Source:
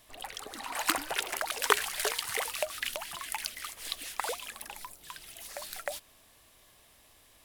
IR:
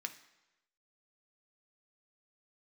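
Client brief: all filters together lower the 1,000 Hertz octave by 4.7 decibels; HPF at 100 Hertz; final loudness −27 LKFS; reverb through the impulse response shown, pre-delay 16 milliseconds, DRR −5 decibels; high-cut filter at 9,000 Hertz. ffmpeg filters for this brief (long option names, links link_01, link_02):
-filter_complex "[0:a]highpass=100,lowpass=9000,equalizer=frequency=1000:width_type=o:gain=-6,asplit=2[link_01][link_02];[1:a]atrim=start_sample=2205,adelay=16[link_03];[link_02][link_03]afir=irnorm=-1:irlink=0,volume=6dB[link_04];[link_01][link_04]amix=inputs=2:normalize=0,volume=3dB"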